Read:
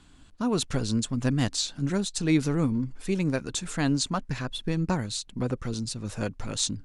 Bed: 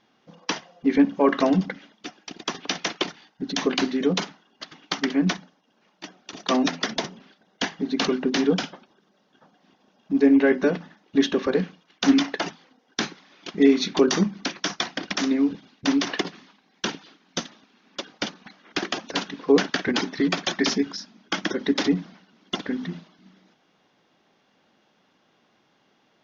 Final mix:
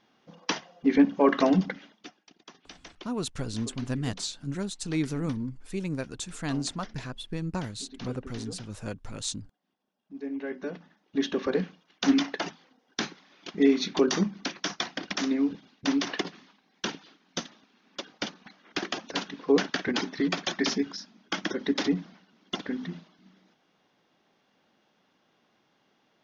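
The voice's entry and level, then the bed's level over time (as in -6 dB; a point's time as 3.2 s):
2.65 s, -5.5 dB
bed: 1.9 s -2 dB
2.36 s -21 dB
10.09 s -21 dB
11.46 s -4.5 dB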